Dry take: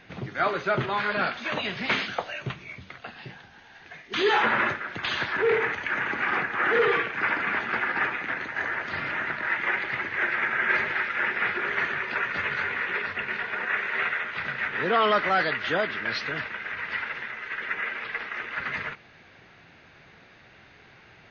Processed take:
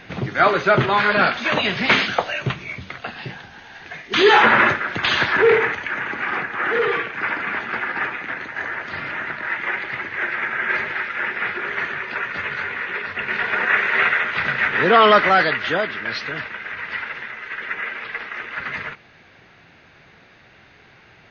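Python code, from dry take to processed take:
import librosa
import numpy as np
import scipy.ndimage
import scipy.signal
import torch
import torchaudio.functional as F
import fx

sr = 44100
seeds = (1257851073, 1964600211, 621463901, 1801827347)

y = fx.gain(x, sr, db=fx.line((5.42, 9.5), (5.94, 2.0), (13.05, 2.0), (13.47, 9.5), (15.17, 9.5), (15.94, 3.0)))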